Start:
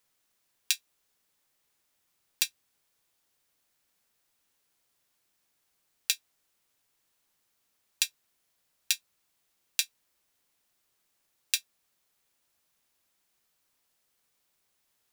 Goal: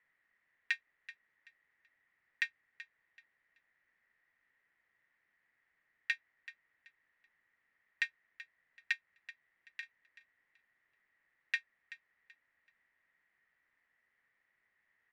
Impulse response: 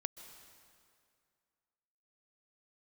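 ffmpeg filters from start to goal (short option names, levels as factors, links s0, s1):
-filter_complex "[0:a]asettb=1/sr,asplit=3[s0][s1][s2];[s0]atrim=end=8.924[s3];[s1]atrim=start=8.92:end=9.83,asetpts=PTS-STARTPTS,afade=t=in:d=0.004:c=qsin,afade=t=out:st=0.906:d=0.004:c=qsin,acompressor=threshold=0.0158:ratio=3[s4];[s2]atrim=start=9.826[s5];[s3][s4]acrossfade=d=0.004:c1=hsin:c2=qsin[s6];[s6][s5]acrossfade=d=0.004:c1=qsin:c2=hsin,lowpass=f=1900:t=q:w=13,asplit=2[s7][s8];[s8]aecho=0:1:381|762|1143:0.158|0.0412|0.0107[s9];[s7][s9]amix=inputs=2:normalize=0,volume=0.531"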